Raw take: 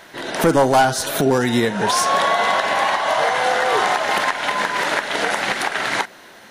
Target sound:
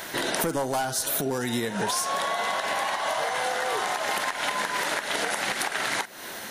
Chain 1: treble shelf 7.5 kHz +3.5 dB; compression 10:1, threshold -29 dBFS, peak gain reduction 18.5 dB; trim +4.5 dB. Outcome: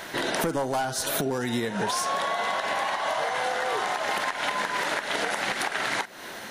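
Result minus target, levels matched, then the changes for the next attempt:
8 kHz band -3.5 dB
change: treble shelf 7.5 kHz +14 dB

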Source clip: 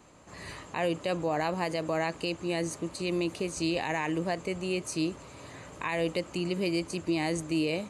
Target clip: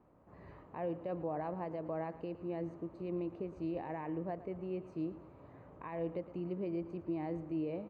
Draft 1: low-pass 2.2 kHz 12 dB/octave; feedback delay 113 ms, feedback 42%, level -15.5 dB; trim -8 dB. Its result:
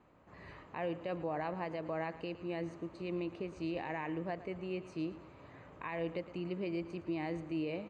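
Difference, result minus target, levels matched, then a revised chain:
2 kHz band +9.5 dB
low-pass 980 Hz 12 dB/octave; feedback delay 113 ms, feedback 42%, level -15.5 dB; trim -8 dB

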